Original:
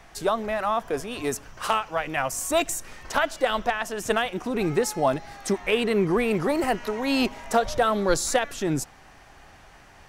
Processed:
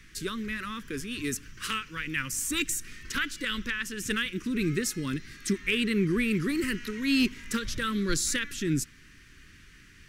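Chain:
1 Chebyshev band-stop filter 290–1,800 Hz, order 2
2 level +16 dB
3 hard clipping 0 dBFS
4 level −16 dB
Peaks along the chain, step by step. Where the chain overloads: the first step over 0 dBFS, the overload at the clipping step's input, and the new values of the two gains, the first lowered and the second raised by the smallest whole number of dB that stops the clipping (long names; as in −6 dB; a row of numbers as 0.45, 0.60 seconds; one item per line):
−12.5, +3.5, 0.0, −16.0 dBFS
step 2, 3.5 dB
step 2 +12 dB, step 4 −12 dB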